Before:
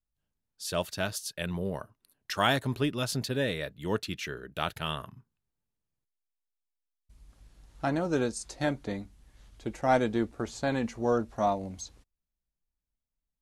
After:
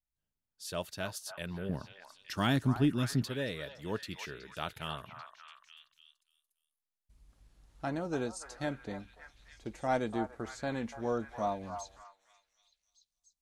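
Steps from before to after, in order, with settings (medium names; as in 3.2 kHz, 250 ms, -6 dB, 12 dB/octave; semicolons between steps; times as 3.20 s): 1.69–3.28 s: resonant low shelf 380 Hz +8 dB, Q 1.5; repeats whose band climbs or falls 290 ms, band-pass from 980 Hz, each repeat 0.7 oct, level -6 dB; trim -6.5 dB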